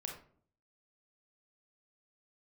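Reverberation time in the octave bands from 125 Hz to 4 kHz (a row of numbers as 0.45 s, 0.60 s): 0.75 s, 0.70 s, 0.60 s, 0.50 s, 0.40 s, 0.30 s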